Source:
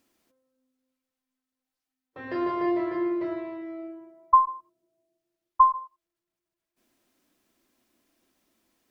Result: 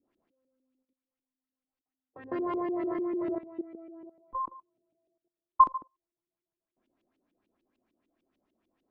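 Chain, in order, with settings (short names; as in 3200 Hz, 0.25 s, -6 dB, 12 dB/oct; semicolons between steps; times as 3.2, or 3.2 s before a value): LFO low-pass saw up 6.7 Hz 280–3200 Hz; bell 1800 Hz -7.5 dB 1.7 oct; level quantiser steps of 16 dB; gain +1 dB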